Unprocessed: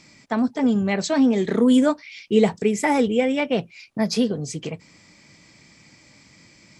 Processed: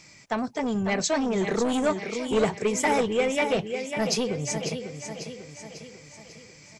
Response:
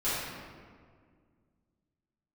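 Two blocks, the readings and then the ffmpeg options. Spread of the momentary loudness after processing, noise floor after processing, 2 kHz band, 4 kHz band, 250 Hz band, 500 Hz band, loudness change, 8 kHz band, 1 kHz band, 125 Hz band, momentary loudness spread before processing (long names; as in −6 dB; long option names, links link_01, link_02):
18 LU, −51 dBFS, −0.5 dB, −0.5 dB, −8.5 dB, −3.0 dB, −5.5 dB, +3.5 dB, −1.0 dB, −3.5 dB, 13 LU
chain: -af "crystalizer=i=0.5:c=0,equalizer=frequency=6500:width=0.43:gain=-5.5,aecho=1:1:546|1092|1638|2184|2730|3276:0.355|0.181|0.0923|0.0471|0.024|0.0122,asoftclip=type=tanh:threshold=-14dB,equalizer=frequency=250:width_type=o:width=0.67:gain=-9,equalizer=frequency=2500:width_type=o:width=0.67:gain=3,equalizer=frequency=6300:width_type=o:width=0.67:gain=8"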